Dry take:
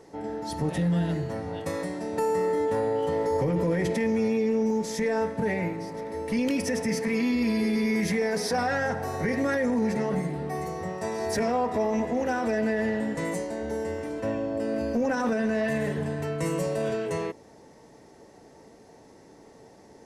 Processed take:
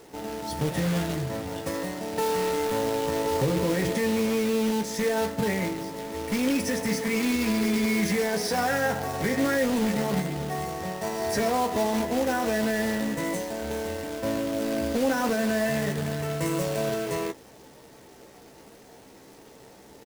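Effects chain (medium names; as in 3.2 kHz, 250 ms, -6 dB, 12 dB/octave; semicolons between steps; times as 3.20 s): companded quantiser 4-bit; doubling 15 ms -8 dB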